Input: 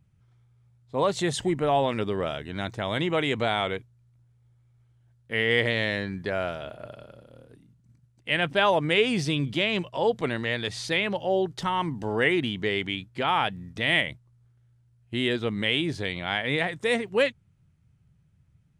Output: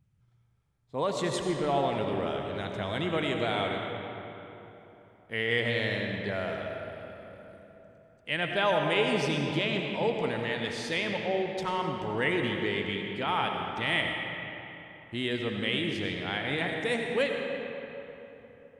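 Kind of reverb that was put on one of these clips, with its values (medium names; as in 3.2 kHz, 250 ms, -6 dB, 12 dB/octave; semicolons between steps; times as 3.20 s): algorithmic reverb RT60 3.5 s, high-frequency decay 0.6×, pre-delay 50 ms, DRR 2 dB; trim -5.5 dB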